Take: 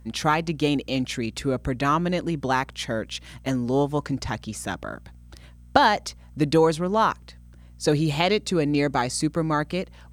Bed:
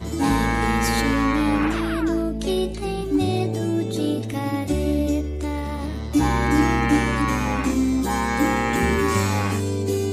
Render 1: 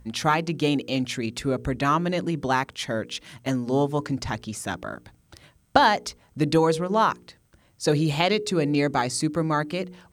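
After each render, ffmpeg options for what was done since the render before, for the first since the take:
-af "bandreject=f=60:t=h:w=4,bandreject=f=120:t=h:w=4,bandreject=f=180:t=h:w=4,bandreject=f=240:t=h:w=4,bandreject=f=300:t=h:w=4,bandreject=f=360:t=h:w=4,bandreject=f=420:t=h:w=4,bandreject=f=480:t=h:w=4"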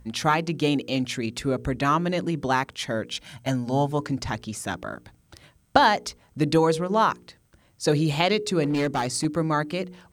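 -filter_complex "[0:a]asettb=1/sr,asplit=3[s0][s1][s2];[s0]atrim=end=3.104[s3];[s1]atrim=start=3.1:end=3.92,asetpts=PTS-STARTPTS,afade=t=in:d=0.004:c=qsin,afade=t=out:st=0.816:d=0.004:c=qsin,aecho=1:1:1.3:0.54,atrim=end_sample=36162[s4];[s2]atrim=start=3.916[s5];[s3][s4]acrossfade=d=0.004:c1=hsin:c2=qsin[s6];[s6][s5]acrossfade=d=0.004:c1=qsin:c2=hsin,asettb=1/sr,asplit=3[s7][s8][s9];[s7]atrim=end=8.634[s10];[s8]atrim=start=8.63:end=9.25,asetpts=PTS-STARTPTS,afade=t=in:d=0.004:c=qsin,afade=t=out:st=0.616:d=0.004:c=qsin,asoftclip=type=hard:threshold=0.1[s11];[s9]atrim=start=9.246[s12];[s10][s11]acrossfade=d=0.004:c1=hsin:c2=qsin[s13];[s13][s12]acrossfade=d=0.004:c1=qsin:c2=hsin"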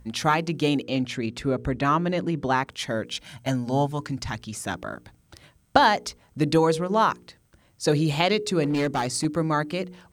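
-filter_complex "[0:a]asettb=1/sr,asplit=3[s0][s1][s2];[s0]atrim=end=0.834[s3];[s1]atrim=start=0.83:end=2.67,asetpts=PTS-STARTPTS,afade=t=in:d=0.004:c=qsin,afade=t=out:st=1.836:d=0.004:c=qsin,aemphasis=mode=reproduction:type=cd[s4];[s2]atrim=start=2.666[s5];[s3][s4]acrossfade=d=0.004:c1=hsin:c2=qsin[s6];[s6][s5]acrossfade=d=0.004:c1=qsin:c2=hsin,asettb=1/sr,asplit=3[s7][s8][s9];[s7]atrim=end=3.874[s10];[s8]atrim=start=3.87:end=4.53,asetpts=PTS-STARTPTS,afade=t=in:d=0.004:c=qsin,afade=t=out:st=0.656:d=0.004:c=qsin,equalizer=f=470:t=o:w=1.7:g=-7.5[s11];[s9]atrim=start=4.526[s12];[s10][s11]acrossfade=d=0.004:c1=hsin:c2=qsin[s13];[s13][s12]acrossfade=d=0.004:c1=qsin:c2=hsin"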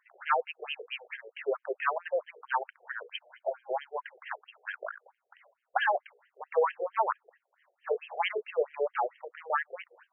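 -filter_complex "[0:a]acrossover=split=140|1700[s0][s1][s2];[s1]asoftclip=type=hard:threshold=0.141[s3];[s0][s3][s2]amix=inputs=3:normalize=0,afftfilt=real='re*between(b*sr/1024,530*pow(2300/530,0.5+0.5*sin(2*PI*4.5*pts/sr))/1.41,530*pow(2300/530,0.5+0.5*sin(2*PI*4.5*pts/sr))*1.41)':imag='im*between(b*sr/1024,530*pow(2300/530,0.5+0.5*sin(2*PI*4.5*pts/sr))/1.41,530*pow(2300/530,0.5+0.5*sin(2*PI*4.5*pts/sr))*1.41)':win_size=1024:overlap=0.75"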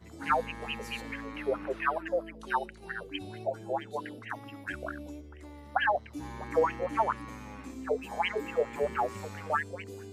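-filter_complex "[1:a]volume=0.0841[s0];[0:a][s0]amix=inputs=2:normalize=0"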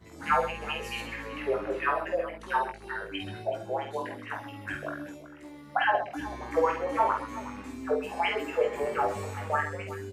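-filter_complex "[0:a]asplit=2[s0][s1];[s1]adelay=20,volume=0.562[s2];[s0][s2]amix=inputs=2:normalize=0,aecho=1:1:49|130|374:0.596|0.211|0.178"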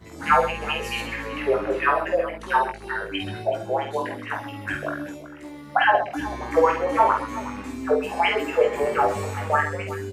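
-af "volume=2.24"

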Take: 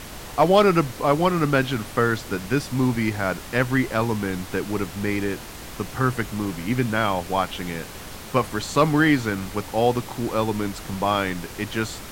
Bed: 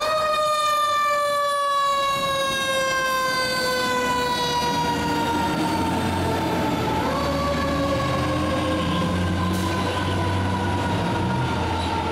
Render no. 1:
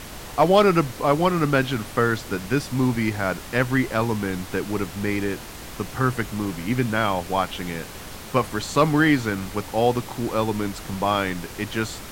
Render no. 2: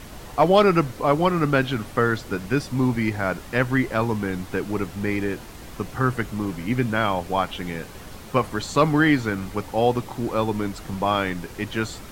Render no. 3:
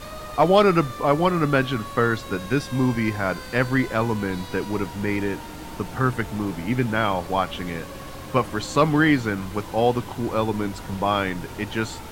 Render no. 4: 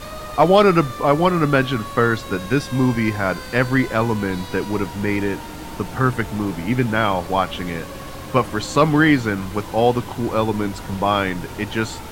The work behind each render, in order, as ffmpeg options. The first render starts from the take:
-af anull
-af "afftdn=nr=6:nf=-38"
-filter_complex "[1:a]volume=0.141[s0];[0:a][s0]amix=inputs=2:normalize=0"
-af "volume=1.5,alimiter=limit=0.794:level=0:latency=1"

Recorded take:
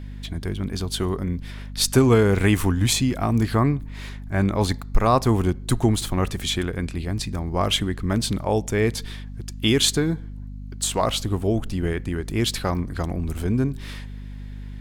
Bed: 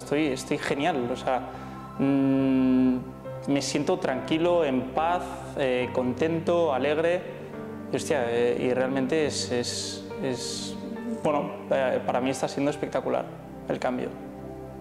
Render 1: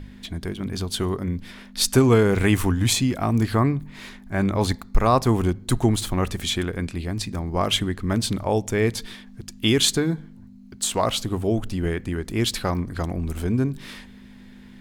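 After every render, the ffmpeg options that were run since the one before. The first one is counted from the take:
-af "bandreject=f=50:t=h:w=4,bandreject=f=100:t=h:w=4,bandreject=f=150:t=h:w=4"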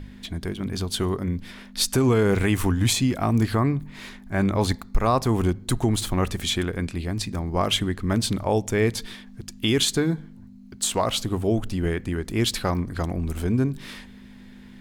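-af "alimiter=limit=0.299:level=0:latency=1:release=116"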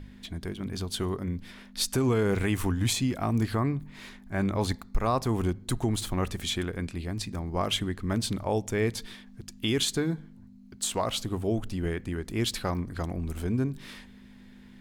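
-af "volume=0.531"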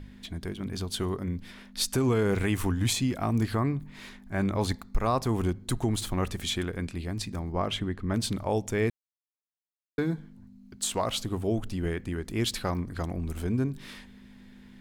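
-filter_complex "[0:a]asettb=1/sr,asplit=3[s0][s1][s2];[s0]atrim=end=7.524[s3];[s1]atrim=start=7.52:end=8.14,asetpts=PTS-STARTPTS,afade=t=in:d=0.004:c=qsin,afade=t=out:st=0.616:d=0.004:c=qsin,lowpass=f=2400:p=1[s4];[s2]atrim=start=8.136[s5];[s3][s4]acrossfade=d=0.004:c1=hsin:c2=qsin[s6];[s6][s5]acrossfade=d=0.004:c1=qsin:c2=hsin,asplit=3[s7][s8][s9];[s7]atrim=end=8.9,asetpts=PTS-STARTPTS,afade=t=out:st=8.896:d=0.004:c=hsin[s10];[s8]atrim=start=8.9:end=9.98,asetpts=PTS-STARTPTS,volume=0[s11];[s9]atrim=start=9.98,asetpts=PTS-STARTPTS,afade=t=in:d=0.004:c=hsin[s12];[s10][s11][s12]concat=n=3:v=0:a=1"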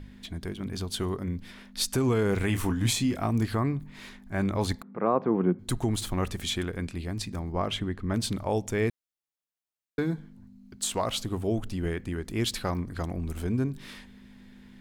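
-filter_complex "[0:a]asettb=1/sr,asplit=3[s0][s1][s2];[s0]atrim=end=2.464[s3];[s1]atrim=start=2.46:end=3.27,asetpts=PTS-STARTPTS,afade=t=in:d=0.004:c=qsin,afade=t=out:st=0.806:d=0.004:c=qsin,asplit=2[s4][s5];[s5]adelay=27,volume=0.398[s6];[s4][s6]amix=inputs=2:normalize=0,atrim=end_sample=35721[s7];[s2]atrim=start=3.266[s8];[s3][s7]acrossfade=d=0.004:c1=hsin:c2=qsin[s9];[s9][s8]acrossfade=d=0.004:c1=qsin:c2=hsin,asettb=1/sr,asplit=3[s10][s11][s12];[s10]atrim=end=4.824[s13];[s11]atrim=start=4.82:end=5.59,asetpts=PTS-STARTPTS,afade=t=in:d=0.004:c=qsin,afade=t=out:st=0.766:d=0.004:c=qsin,highpass=f=170:w=0.5412,highpass=f=170:w=1.3066,equalizer=f=180:t=q:w=4:g=9,equalizer=f=340:t=q:w=4:g=5,equalizer=f=490:t=q:w=4:g=7,equalizer=f=1900:t=q:w=4:g=-4,lowpass=f=2100:w=0.5412,lowpass=f=2100:w=1.3066[s14];[s12]atrim=start=5.586[s15];[s13][s14]acrossfade=d=0.004:c1=hsin:c2=qsin[s16];[s16][s15]acrossfade=d=0.004:c1=qsin:c2=hsin"

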